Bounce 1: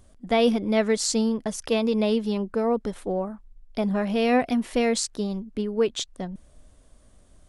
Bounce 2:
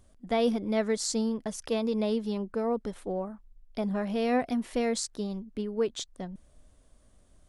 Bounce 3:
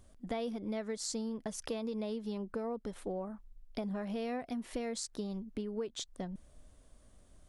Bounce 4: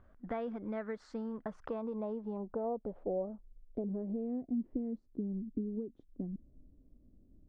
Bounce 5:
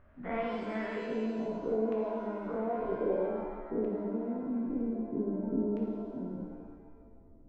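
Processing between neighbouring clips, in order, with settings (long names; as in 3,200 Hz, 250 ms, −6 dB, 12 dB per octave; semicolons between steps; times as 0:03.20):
dynamic equaliser 2,700 Hz, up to −5 dB, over −44 dBFS, Q 2.4; level −5.5 dB
downward compressor, threshold −35 dBFS, peak gain reduction 13 dB
low-pass filter sweep 1,500 Hz → 290 Hz, 0:01.26–0:04.53; level −2 dB
every bin's largest magnitude spread in time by 120 ms; auto-filter low-pass square 0.52 Hz 420–2,500 Hz; reverb with rising layers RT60 1.5 s, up +7 semitones, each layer −8 dB, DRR −0.5 dB; level −4.5 dB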